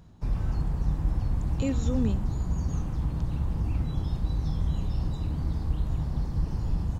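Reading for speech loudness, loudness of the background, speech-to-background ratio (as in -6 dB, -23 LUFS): -32.0 LUFS, -30.5 LUFS, -1.5 dB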